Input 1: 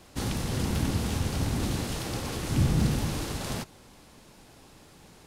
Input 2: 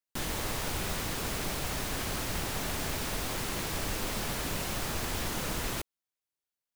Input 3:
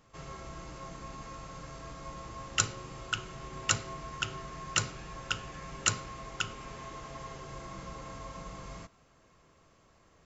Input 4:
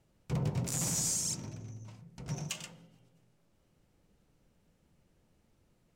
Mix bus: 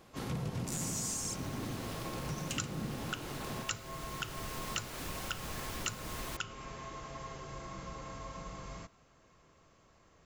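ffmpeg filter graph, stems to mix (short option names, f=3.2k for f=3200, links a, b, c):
-filter_complex "[0:a]highpass=150,equalizer=f=7.6k:w=0.6:g=-7,volume=-5.5dB[a];[1:a]adelay=550,volume=-6.5dB,afade=t=in:st=3.95:d=0.72:silence=0.446684[b];[2:a]volume=-1dB[c];[3:a]volume=2dB[d];[a][b][c][d]amix=inputs=4:normalize=0,acompressor=threshold=-36dB:ratio=3"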